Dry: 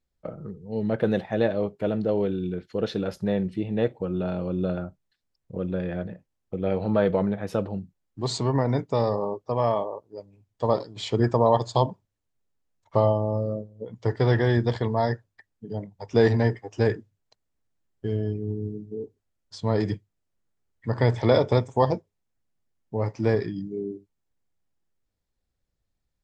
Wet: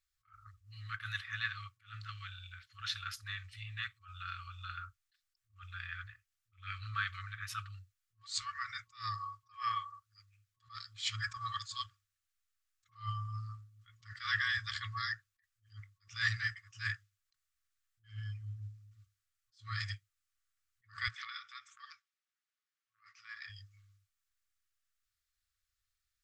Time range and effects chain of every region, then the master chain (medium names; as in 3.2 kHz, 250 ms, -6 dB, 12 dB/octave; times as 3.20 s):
21.08–23.50 s: compression 8:1, threshold -26 dBFS + high-pass 750 Hz + distance through air 93 m
whole clip: FFT band-reject 110–1100 Hz; tone controls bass -12 dB, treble +2 dB; attacks held to a fixed rise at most 200 dB/s; trim +1 dB